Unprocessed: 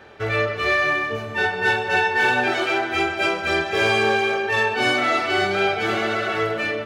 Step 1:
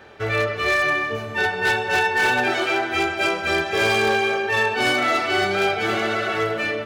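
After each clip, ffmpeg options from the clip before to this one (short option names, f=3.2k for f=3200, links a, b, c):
-af "aeval=exprs='0.237*(abs(mod(val(0)/0.237+3,4)-2)-1)':c=same,highshelf=f=8k:g=4"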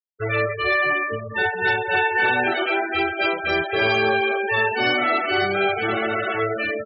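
-af "afftfilt=real='re*gte(hypot(re,im),0.0891)':imag='im*gte(hypot(re,im),0.0891)':win_size=1024:overlap=0.75"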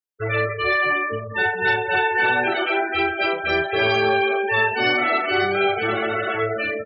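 -filter_complex "[0:a]asplit=2[a][b];[b]adelay=38,volume=-11dB[c];[a][c]amix=inputs=2:normalize=0"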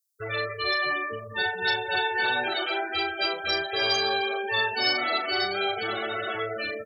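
-filter_complex "[0:a]acrossover=split=420[a][b];[a]alimiter=level_in=4.5dB:limit=-24dB:level=0:latency=1:release=268,volume=-4.5dB[c];[c][b]amix=inputs=2:normalize=0,aexciter=amount=8.5:drive=4.6:freq=3.8k,volume=-6.5dB"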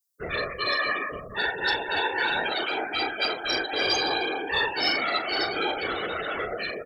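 -af "acontrast=52,afftfilt=real='hypot(re,im)*cos(2*PI*random(0))':imag='hypot(re,im)*sin(2*PI*random(1))':win_size=512:overlap=0.75"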